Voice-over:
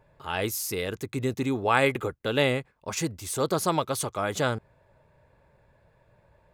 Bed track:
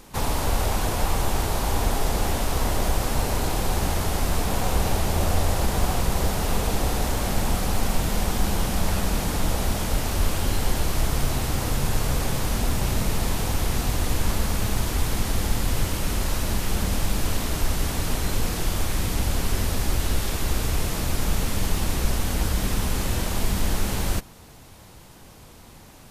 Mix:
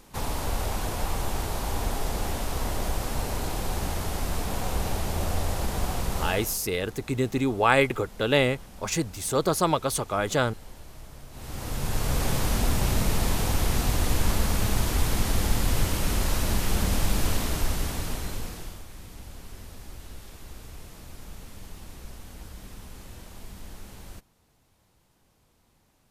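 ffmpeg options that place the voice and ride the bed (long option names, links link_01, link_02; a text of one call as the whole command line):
ffmpeg -i stem1.wav -i stem2.wav -filter_complex "[0:a]adelay=5950,volume=2dB[link_01];[1:a]volume=16dB,afade=type=out:start_time=6.23:duration=0.35:silence=0.149624,afade=type=in:start_time=11.31:duration=1:silence=0.0841395,afade=type=out:start_time=17.26:duration=1.57:silence=0.11885[link_02];[link_01][link_02]amix=inputs=2:normalize=0" out.wav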